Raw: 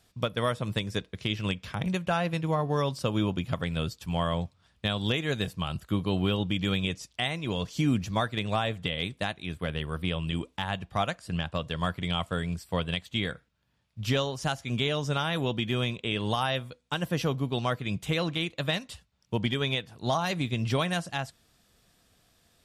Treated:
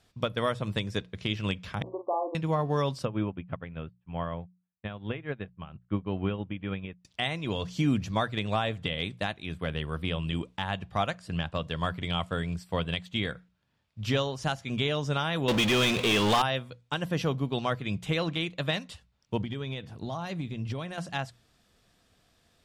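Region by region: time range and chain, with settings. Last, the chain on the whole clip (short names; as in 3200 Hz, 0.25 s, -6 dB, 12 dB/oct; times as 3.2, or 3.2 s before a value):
1.82–2.35 brick-wall FIR band-pass 250–1200 Hz + doubler 45 ms -7 dB
3.05–7.05 LPF 2500 Hz 24 dB/oct + upward expander 2.5:1, over -47 dBFS
15.48–16.42 low shelf 240 Hz -11.5 dB + power-law curve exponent 0.35
19.41–20.98 low shelf 430 Hz +7.5 dB + compressor 5:1, threshold -31 dBFS
whole clip: high shelf 8900 Hz -11 dB; notches 60/120/180 Hz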